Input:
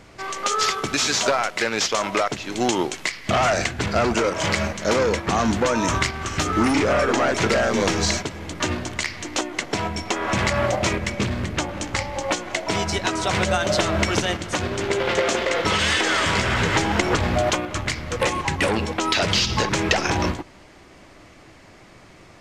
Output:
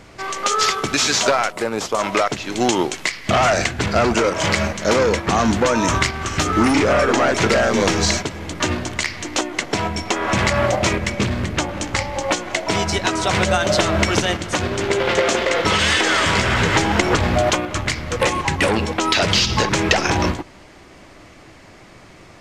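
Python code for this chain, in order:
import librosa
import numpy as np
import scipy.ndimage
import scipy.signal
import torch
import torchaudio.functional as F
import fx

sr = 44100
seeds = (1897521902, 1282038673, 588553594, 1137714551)

y = fx.band_shelf(x, sr, hz=3200.0, db=-11.0, octaves=2.4, at=(1.51, 1.98), fade=0.02)
y = F.gain(torch.from_numpy(y), 3.5).numpy()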